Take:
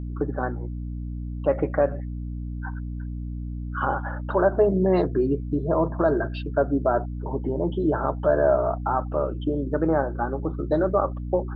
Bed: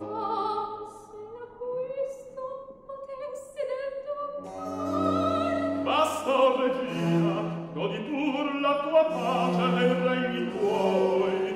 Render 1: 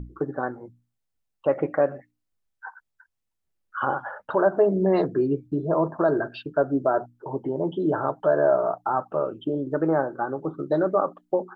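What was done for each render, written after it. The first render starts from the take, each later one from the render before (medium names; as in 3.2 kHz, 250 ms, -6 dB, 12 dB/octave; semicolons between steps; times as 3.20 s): hum notches 60/120/180/240/300 Hz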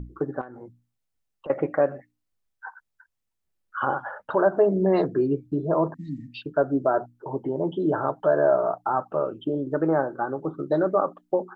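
0.41–1.50 s: compression 12:1, threshold -35 dBFS; 5.94–6.42 s: brick-wall FIR band-stop 300–1800 Hz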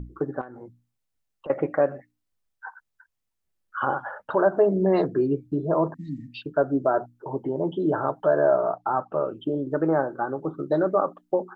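8.58–9.28 s: distance through air 62 m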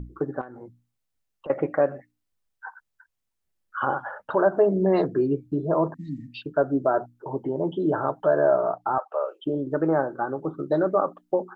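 8.98–9.46 s: steep high-pass 490 Hz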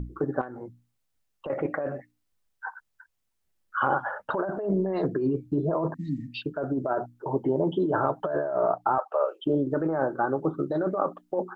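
compressor with a negative ratio -25 dBFS, ratio -1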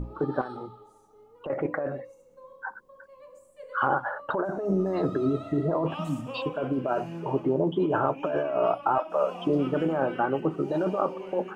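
add bed -13.5 dB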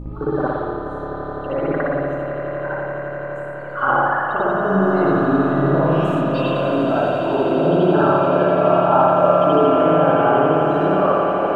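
echo with a slow build-up 85 ms, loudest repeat 8, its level -12.5 dB; spring tank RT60 1.6 s, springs 57 ms, chirp 50 ms, DRR -8.5 dB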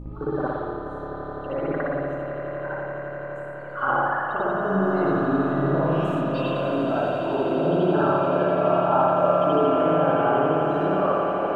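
trim -5.5 dB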